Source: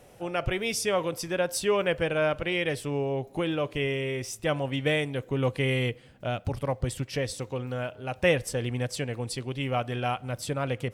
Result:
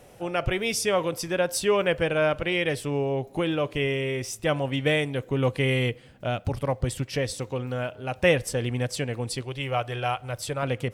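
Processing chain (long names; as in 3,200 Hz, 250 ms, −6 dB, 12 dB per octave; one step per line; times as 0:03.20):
0:09.41–0:10.63: parametric band 220 Hz −14.5 dB 0.69 octaves
level +2.5 dB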